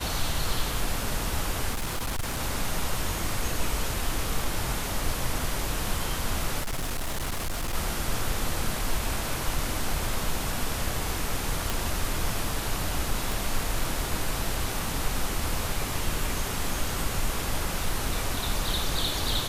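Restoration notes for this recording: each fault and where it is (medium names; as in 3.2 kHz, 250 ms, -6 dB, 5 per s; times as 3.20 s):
1.71–2.39 s: clipped -25.5 dBFS
6.60–7.75 s: clipped -26 dBFS
11.70 s: pop
13.32 s: pop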